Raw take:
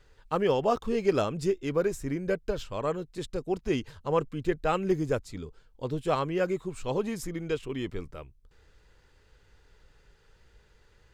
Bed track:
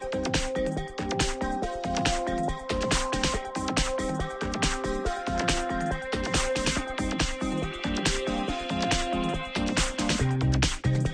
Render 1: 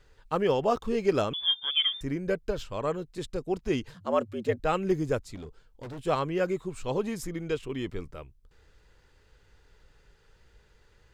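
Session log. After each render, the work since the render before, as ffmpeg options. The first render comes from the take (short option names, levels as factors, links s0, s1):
-filter_complex "[0:a]asettb=1/sr,asplit=3[s0][s1][s2];[s0]atrim=end=1.334[s3];[s1]atrim=start=1.33:end=2.01,asetpts=PTS-STARTPTS,afade=t=in:d=0.004:c=qsin,afade=t=out:st=0.676:d=0.004:c=qsin,lowpass=f=3100:t=q:w=0.5098,lowpass=f=3100:t=q:w=0.6013,lowpass=f=3100:t=q:w=0.9,lowpass=f=3100:t=q:w=2.563,afreqshift=-3600[s4];[s2]atrim=start=2.006[s5];[s3][s4]acrossfade=d=0.004:c1=hsin:c2=qsin[s6];[s6][s5]acrossfade=d=0.004:c1=qsin:c2=hsin,asettb=1/sr,asplit=3[s7][s8][s9];[s7]atrim=end=3.944[s10];[s8]atrim=start=3.94:end=4.6,asetpts=PTS-STARTPTS,afade=t=in:d=0.004:c=qsin,afade=t=out:st=0.656:d=0.004:c=qsin,afreqshift=91[s11];[s9]atrim=start=4.596[s12];[s10][s11]acrossfade=d=0.004:c1=hsin:c2=qsin[s13];[s13][s12]acrossfade=d=0.004:c1=qsin:c2=hsin,asplit=3[s14][s15][s16];[s14]afade=t=out:st=5.34:d=0.02[s17];[s15]asoftclip=type=hard:threshold=0.0133,afade=t=in:st=5.34:d=0.02,afade=t=out:st=6.05:d=0.02[s18];[s16]afade=t=in:st=6.05:d=0.02[s19];[s17][s18][s19]amix=inputs=3:normalize=0"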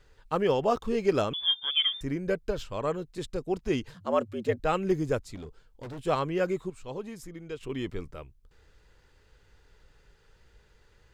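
-filter_complex "[0:a]asplit=3[s0][s1][s2];[s0]atrim=end=6.702[s3];[s1]atrim=start=6.698:end=7.612,asetpts=PTS-STARTPTS,volume=0.398[s4];[s2]atrim=start=7.608[s5];[s3][s4]acrossfade=d=0.004:c1=hsin:c2=hsin[s6];[s6][s5]acrossfade=d=0.004:c1=hsin:c2=hsin"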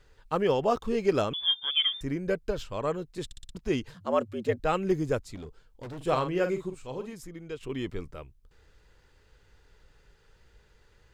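-filter_complex "[0:a]asettb=1/sr,asplit=3[s0][s1][s2];[s0]atrim=end=5.964[s3];[s1]atrim=start=5.96:end=7.13,asetpts=PTS-STARTPTS,afade=t=in:d=0.004:c=qsin,afade=t=out:st=1.166:d=0.004:c=qsin,asplit=2[s4][s5];[s5]adelay=46,volume=0.376[s6];[s4][s6]amix=inputs=2:normalize=0,atrim=end_sample=51597[s7];[s2]atrim=start=7.126[s8];[s3][s7]acrossfade=d=0.004:c1=hsin:c2=qsin[s9];[s9][s8]acrossfade=d=0.004:c1=qsin:c2=hsin,asplit=6[s10][s11][s12][s13][s14][s15];[s10]atrim=end=3.312[s16];[s11]atrim=start=3.248:end=3.312[s17];[s12]atrim=start=3.248:end=3.312[s18];[s13]atrim=start=3.248:end=3.312[s19];[s14]atrim=start=3.248:end=3.312[s20];[s15]atrim=start=3.548[s21];[s16][s17]acrossfade=d=0.004:c1=hsin:c2=hsin[s22];[s22][s18]acrossfade=d=0.004:c1=hsin:c2=hsin[s23];[s23][s19]acrossfade=d=0.004:c1=hsin:c2=hsin[s24];[s24][s20]acrossfade=d=0.004:c1=hsin:c2=hsin[s25];[s25][s21]acrossfade=d=0.004:c1=hsin:c2=hsin"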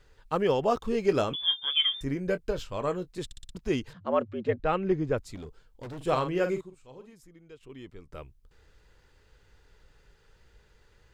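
-filter_complex "[0:a]asettb=1/sr,asplit=3[s0][s1][s2];[s0]atrim=end=1.064[s3];[s1]atrim=start=1.06:end=3.13,asetpts=PTS-STARTPTS,afade=t=in:d=0.004:c=qsin,afade=t=out:st=2.066:d=0.004:c=qsin,asplit=2[s4][s5];[s5]adelay=22,volume=0.237[s6];[s4][s6]amix=inputs=2:normalize=0,atrim=end_sample=91287[s7];[s2]atrim=start=3.126[s8];[s3][s7]acrossfade=d=0.004:c1=hsin:c2=qsin[s9];[s9][s8]acrossfade=d=0.004:c1=qsin:c2=hsin,asettb=1/sr,asplit=3[s10][s11][s12];[s10]atrim=end=3.934[s13];[s11]atrim=start=3.93:end=5.18,asetpts=PTS-STARTPTS,afade=t=in:d=0.004:c=qsin,afade=t=out:st=1.246:d=0.004:c=qsin,lowpass=3000[s14];[s12]atrim=start=5.176[s15];[s13][s14]acrossfade=d=0.004:c1=hsin:c2=qsin[s16];[s16][s15]acrossfade=d=0.004:c1=qsin:c2=hsin,asplit=3[s17][s18][s19];[s17]atrim=end=6.612[s20];[s18]atrim=start=6.608:end=8.122,asetpts=PTS-STARTPTS,volume=0.266[s21];[s19]atrim=start=8.118[s22];[s20][s21]acrossfade=d=0.004:c1=hsin:c2=hsin[s23];[s23][s22]acrossfade=d=0.004:c1=hsin:c2=hsin"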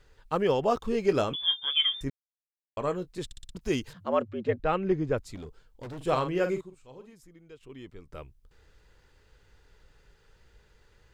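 -filter_complex "[0:a]asettb=1/sr,asplit=3[s0][s1][s2];[s0]atrim=end=3.614[s3];[s1]atrim=start=3.61:end=4.22,asetpts=PTS-STARTPTS,afade=t=in:d=0.004:c=qsin,afade=t=out:st=0.606:d=0.004:c=qsin,aemphasis=mode=production:type=cd[s4];[s2]atrim=start=4.216[s5];[s3][s4]acrossfade=d=0.004:c1=hsin:c2=qsin[s6];[s6][s5]acrossfade=d=0.004:c1=qsin:c2=hsin,asplit=3[s7][s8][s9];[s7]atrim=end=2.1,asetpts=PTS-STARTPTS,afade=t=out:st=2.096:d=0.004:c=hsin[s10];[s8]atrim=start=2.1:end=2.77,asetpts=PTS-STARTPTS,volume=0[s11];[s9]atrim=start=2.77,asetpts=PTS-STARTPTS,afade=t=in:d=0.004:c=hsin[s12];[s10][s11][s12]concat=n=3:v=0:a=1"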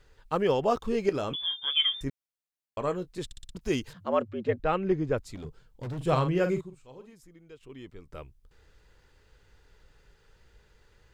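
-filter_complex "[0:a]asettb=1/sr,asplit=3[s0][s1][s2];[s0]atrim=end=1.094[s3];[s1]atrim=start=1.09:end=1.66,asetpts=PTS-STARTPTS,afade=t=in:d=0.004:c=qsin,afade=t=out:st=0.566:d=0.004:c=qsin,acompressor=threshold=0.0501:ratio=6:attack=3.2:release=140:knee=1:detection=peak[s4];[s2]atrim=start=1.656[s5];[s3][s4]acrossfade=d=0.004:c1=hsin:c2=qsin[s6];[s6][s5]acrossfade=d=0.004:c1=qsin:c2=hsin,asettb=1/sr,asplit=3[s7][s8][s9];[s7]atrim=end=5.444[s10];[s8]atrim=start=5.44:end=6.82,asetpts=PTS-STARTPTS,afade=t=in:d=0.004:c=qsin,afade=t=out:st=1.376:d=0.004:c=qsin,equalizer=f=140:w=1.5:g=9[s11];[s9]atrim=start=6.816[s12];[s10][s11]acrossfade=d=0.004:c1=hsin:c2=qsin[s13];[s13][s12]acrossfade=d=0.004:c1=qsin:c2=hsin"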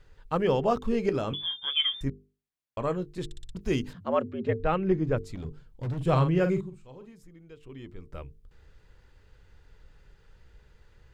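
-af "bass=f=250:g=6,treble=f=4000:g=-4,bandreject=f=50:t=h:w=6,bandreject=f=100:t=h:w=6,bandreject=f=150:t=h:w=6,bandreject=f=200:t=h:w=6,bandreject=f=250:t=h:w=6,bandreject=f=300:t=h:w=6,bandreject=f=350:t=h:w=6,bandreject=f=400:t=h:w=6,bandreject=f=450:t=h:w=6"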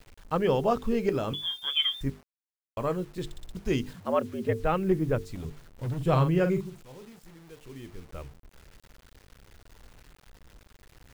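-af "acrusher=bits=8:mix=0:aa=0.000001"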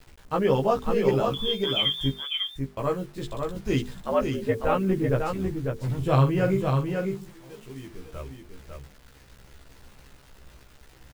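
-filter_complex "[0:a]asplit=2[s0][s1];[s1]adelay=15,volume=0.794[s2];[s0][s2]amix=inputs=2:normalize=0,aecho=1:1:548:0.596"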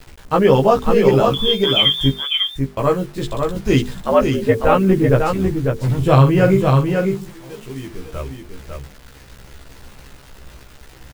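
-af "volume=3.16,alimiter=limit=0.891:level=0:latency=1"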